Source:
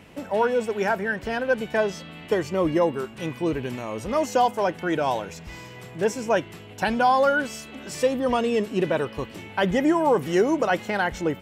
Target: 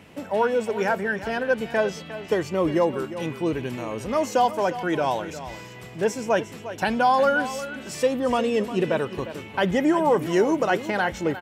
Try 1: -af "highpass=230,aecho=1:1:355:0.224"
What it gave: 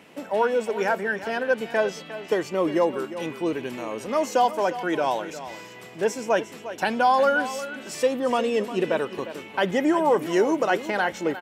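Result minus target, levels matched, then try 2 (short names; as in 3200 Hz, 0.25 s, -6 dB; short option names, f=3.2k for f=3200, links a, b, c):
125 Hz band -6.5 dB
-af "highpass=60,aecho=1:1:355:0.224"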